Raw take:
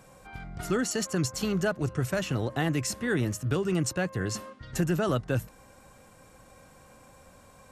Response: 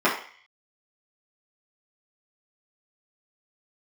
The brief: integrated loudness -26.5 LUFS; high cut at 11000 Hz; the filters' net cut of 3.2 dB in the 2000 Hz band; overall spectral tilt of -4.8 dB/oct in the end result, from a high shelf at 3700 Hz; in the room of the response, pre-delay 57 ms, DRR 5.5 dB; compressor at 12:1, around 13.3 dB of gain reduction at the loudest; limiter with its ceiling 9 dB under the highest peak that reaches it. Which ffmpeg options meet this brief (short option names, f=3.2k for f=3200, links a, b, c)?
-filter_complex "[0:a]lowpass=11k,equalizer=f=2k:t=o:g=-5.5,highshelf=f=3.7k:g=4,acompressor=threshold=-36dB:ratio=12,alimiter=level_in=9dB:limit=-24dB:level=0:latency=1,volume=-9dB,asplit=2[a][b];[1:a]atrim=start_sample=2205,adelay=57[c];[b][c]afir=irnorm=-1:irlink=0,volume=-24dB[d];[a][d]amix=inputs=2:normalize=0,volume=16dB"